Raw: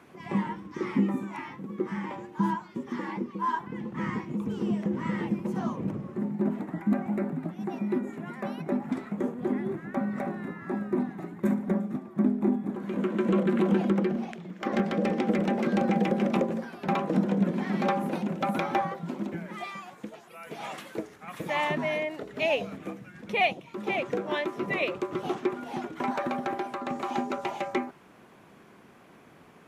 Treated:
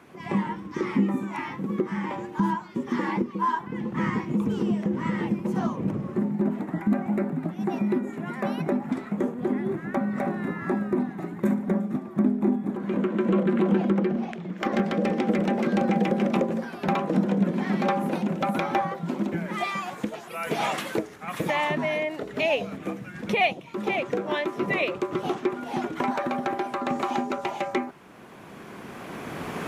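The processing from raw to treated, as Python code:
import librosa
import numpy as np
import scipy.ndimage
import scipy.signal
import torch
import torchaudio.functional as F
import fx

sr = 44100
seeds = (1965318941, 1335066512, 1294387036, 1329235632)

y = fx.recorder_agc(x, sr, target_db=-18.5, rise_db_per_s=11.0, max_gain_db=30)
y = fx.high_shelf(y, sr, hz=4600.0, db=-8.0, at=(12.77, 14.58))
y = y * 10.0 ** (2.0 / 20.0)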